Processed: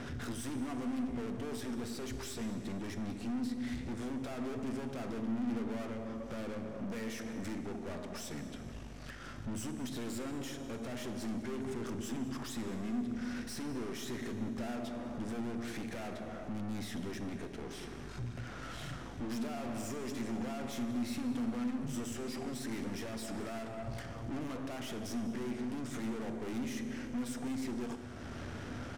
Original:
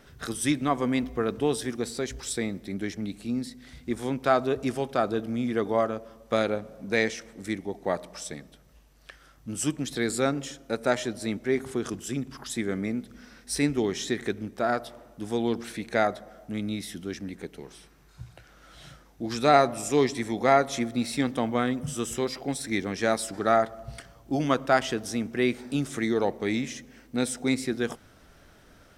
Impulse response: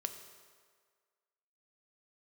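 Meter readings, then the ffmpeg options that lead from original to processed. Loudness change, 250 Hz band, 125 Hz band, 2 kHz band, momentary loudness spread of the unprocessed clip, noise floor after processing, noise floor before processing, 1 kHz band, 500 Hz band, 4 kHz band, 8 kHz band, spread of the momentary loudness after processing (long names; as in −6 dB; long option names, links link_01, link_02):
−11.5 dB, −7.5 dB, −7.5 dB, −14.0 dB, 14 LU, −46 dBFS, −56 dBFS, −17.0 dB, −15.5 dB, −11.5 dB, −11.5 dB, 7 LU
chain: -filter_complex "[0:a]alimiter=limit=-16dB:level=0:latency=1,highpass=59,acompressor=threshold=-52dB:ratio=2,lowpass=5800,aeval=exprs='(tanh(708*val(0)+0.65)-tanh(0.65))/708':channel_layout=same,equalizer=frequency=100:width_type=o:width=0.67:gain=9,equalizer=frequency=250:width_type=o:width=0.67:gain=6,equalizer=frequency=4000:width_type=o:width=0.67:gain=-4,asplit=2[link_01][link_02];[link_02]adelay=198.3,volume=-17dB,highshelf=frequency=4000:gain=-4.46[link_03];[link_01][link_03]amix=inputs=2:normalize=0,asplit=2[link_04][link_05];[1:a]atrim=start_sample=2205,asetrate=26460,aresample=44100[link_06];[link_05][link_06]afir=irnorm=-1:irlink=0,volume=6dB[link_07];[link_04][link_07]amix=inputs=2:normalize=0,volume=4.5dB"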